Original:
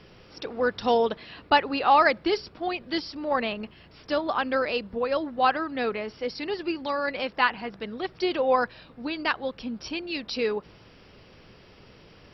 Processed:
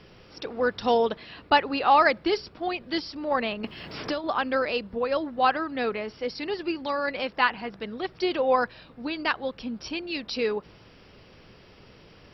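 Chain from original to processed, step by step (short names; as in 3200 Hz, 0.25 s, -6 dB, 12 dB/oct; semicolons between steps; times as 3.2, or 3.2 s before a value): 3.64–4.24 three-band squash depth 100%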